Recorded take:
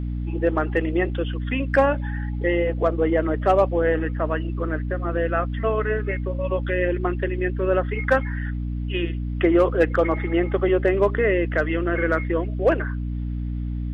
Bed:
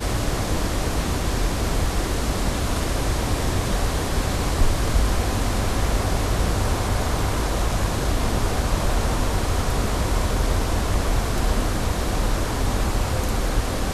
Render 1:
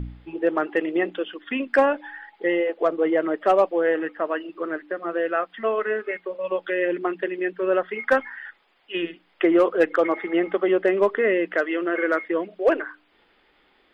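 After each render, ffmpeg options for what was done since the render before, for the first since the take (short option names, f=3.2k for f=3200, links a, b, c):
-af "bandreject=f=60:t=h:w=4,bandreject=f=120:t=h:w=4,bandreject=f=180:t=h:w=4,bandreject=f=240:t=h:w=4,bandreject=f=300:t=h:w=4"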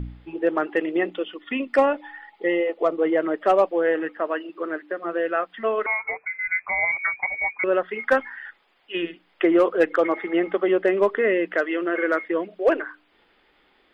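-filter_complex "[0:a]asettb=1/sr,asplit=3[a][b][c];[a]atrim=end=1.104[d];[b]atrim=start=1.1:end=2.98,asetpts=PTS-STARTPTS,afade=t=in:d=0.004:c=qsin,afade=t=out:st=1.876:d=0.004:c=qsin,asuperstop=centerf=1600:order=4:qfactor=6.4[e];[c]atrim=start=2.976[f];[d][e]acrossfade=d=0.004:c1=hsin:c2=qsin[g];[g][f]acrossfade=d=0.004:c1=qsin:c2=hsin,asettb=1/sr,asplit=3[h][i][j];[h]atrim=end=4.174[k];[i]atrim=start=4.17:end=5.04,asetpts=PTS-STARTPTS,afade=t=in:d=0.004:c=qsin,afade=t=out:st=0.866:d=0.004:c=qsin,highpass=190[l];[j]atrim=start=5.036[m];[k][l]acrossfade=d=0.004:c1=hsin:c2=qsin[n];[n][m]acrossfade=d=0.004:c1=qsin:c2=hsin,asettb=1/sr,asplit=3[o][p][q];[o]atrim=end=5.864[r];[p]atrim=start=5.86:end=7.64,asetpts=PTS-STARTPTS,afade=t=in:d=0.004:c=qsin,afade=t=out:st=1.776:d=0.004:c=qsin,lowpass=f=2.2k:t=q:w=0.5098,lowpass=f=2.2k:t=q:w=0.6013,lowpass=f=2.2k:t=q:w=0.9,lowpass=f=2.2k:t=q:w=2.563,afreqshift=-2600[s];[q]atrim=start=7.636[t];[r][s]acrossfade=d=0.004:c1=hsin:c2=qsin[u];[u][t]acrossfade=d=0.004:c1=qsin:c2=hsin"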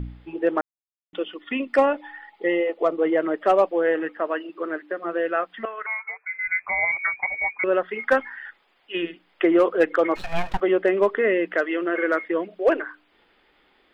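-filter_complex "[0:a]asettb=1/sr,asplit=3[a][b][c];[a]atrim=end=5.654[d];[b]atrim=start=5.65:end=6.29,asetpts=PTS-STARTPTS,afade=t=in:d=0.004:c=qsin,afade=t=out:st=0.636:d=0.004:c=qsin,bandpass=f=1.6k:t=q:w=1.9[e];[c]atrim=start=6.286[f];[d][e]acrossfade=d=0.004:c1=hsin:c2=qsin[g];[g][f]acrossfade=d=0.004:c1=qsin:c2=hsin,asplit=3[h][i][j];[h]afade=t=out:st=10.15:d=0.02[k];[i]aeval=exprs='abs(val(0))':c=same,afade=t=in:st=10.15:d=0.02,afade=t=out:st=10.59:d=0.02[l];[j]afade=t=in:st=10.59:d=0.02[m];[k][l][m]amix=inputs=3:normalize=0,asplit=3[n][o][p];[n]atrim=end=0.61,asetpts=PTS-STARTPTS,afade=t=out:st=0.606:d=0.004:c=hsin[q];[o]atrim=start=0.61:end=1.13,asetpts=PTS-STARTPTS,volume=0[r];[p]atrim=start=1.13,asetpts=PTS-STARTPTS,afade=t=in:d=0.004:c=hsin[s];[q][r][s]concat=n=3:v=0:a=1"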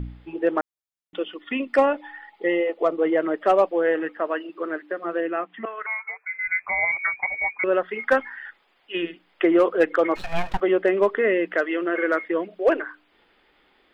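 -filter_complex "[0:a]asplit=3[a][b][c];[a]afade=t=out:st=5.2:d=0.02[d];[b]highpass=130,equalizer=f=190:t=q:w=4:g=5,equalizer=f=310:t=q:w=4:g=6,equalizer=f=560:t=q:w=4:g=-8,equalizer=f=1.5k:t=q:w=4:g=-8,lowpass=f=2.9k:w=0.5412,lowpass=f=2.9k:w=1.3066,afade=t=in:st=5.2:d=0.02,afade=t=out:st=5.65:d=0.02[e];[c]afade=t=in:st=5.65:d=0.02[f];[d][e][f]amix=inputs=3:normalize=0"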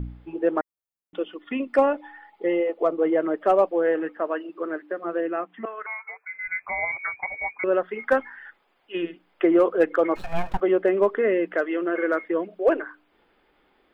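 -af "equalizer=f=4k:t=o:w=2.4:g=-7.5,bandreject=f=1.9k:w=23"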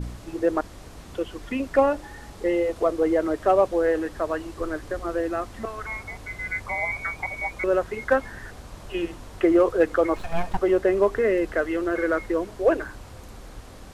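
-filter_complex "[1:a]volume=-19.5dB[a];[0:a][a]amix=inputs=2:normalize=0"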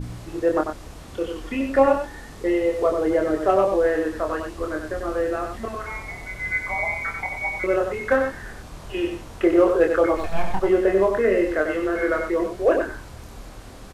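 -filter_complex "[0:a]asplit=2[a][b];[b]adelay=26,volume=-4dB[c];[a][c]amix=inputs=2:normalize=0,aecho=1:1:94:0.501"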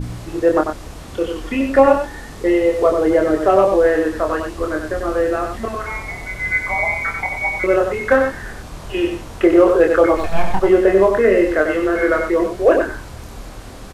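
-af "volume=6dB,alimiter=limit=-2dB:level=0:latency=1"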